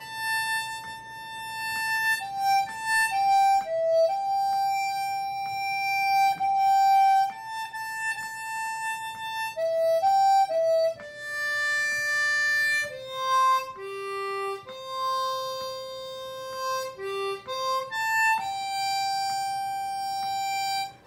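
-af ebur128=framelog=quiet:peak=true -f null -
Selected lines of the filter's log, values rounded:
Integrated loudness:
  I:         -25.8 LUFS
  Threshold: -36.0 LUFS
Loudness range:
  LRA:         6.0 LU
  Threshold: -45.8 LUFS
  LRA low:   -30.0 LUFS
  LRA high:  -24.0 LUFS
True peak:
  Peak:      -16.3 dBFS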